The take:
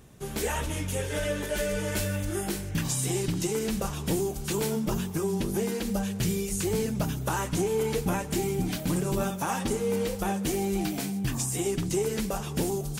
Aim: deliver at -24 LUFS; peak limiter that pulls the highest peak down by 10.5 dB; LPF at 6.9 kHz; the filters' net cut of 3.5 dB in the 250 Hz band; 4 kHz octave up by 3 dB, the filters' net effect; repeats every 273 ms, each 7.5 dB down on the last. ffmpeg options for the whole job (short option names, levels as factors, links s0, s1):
-af "lowpass=6900,equalizer=f=250:t=o:g=-5.5,equalizer=f=4000:t=o:g=4.5,alimiter=level_in=1.58:limit=0.0631:level=0:latency=1,volume=0.631,aecho=1:1:273|546|819|1092|1365:0.422|0.177|0.0744|0.0312|0.0131,volume=3.76"